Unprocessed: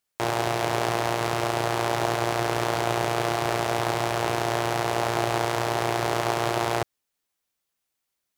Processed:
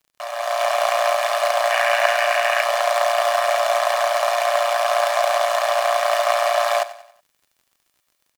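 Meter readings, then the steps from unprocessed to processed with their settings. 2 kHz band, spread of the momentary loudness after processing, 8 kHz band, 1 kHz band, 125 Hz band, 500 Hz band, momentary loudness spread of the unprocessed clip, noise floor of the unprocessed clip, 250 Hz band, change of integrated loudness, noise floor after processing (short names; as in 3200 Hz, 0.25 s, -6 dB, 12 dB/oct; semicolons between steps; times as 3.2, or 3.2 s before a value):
+8.0 dB, 3 LU, +4.5 dB, +6.5 dB, under -40 dB, +7.5 dB, 1 LU, -81 dBFS, under -40 dB, +6.5 dB, -71 dBFS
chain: minimum comb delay 1.7 ms; Chebyshev high-pass 580 Hz, order 6; AGC gain up to 12 dB; spectral gain 1.7–2.62, 1400–3000 Hz +7 dB; crackle 50/s -45 dBFS; on a send: feedback echo 93 ms, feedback 44%, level -16 dB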